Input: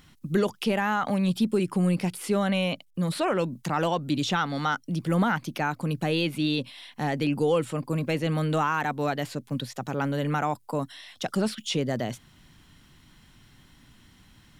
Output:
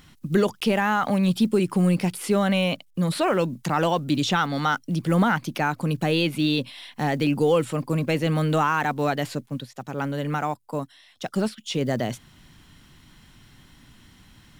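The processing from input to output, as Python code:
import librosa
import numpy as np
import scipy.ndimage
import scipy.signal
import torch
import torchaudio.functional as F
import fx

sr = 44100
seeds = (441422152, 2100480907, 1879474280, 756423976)

y = fx.block_float(x, sr, bits=7)
y = fx.upward_expand(y, sr, threshold_db=-42.0, expansion=1.5, at=(9.45, 11.8), fade=0.02)
y = F.gain(torch.from_numpy(y), 3.5).numpy()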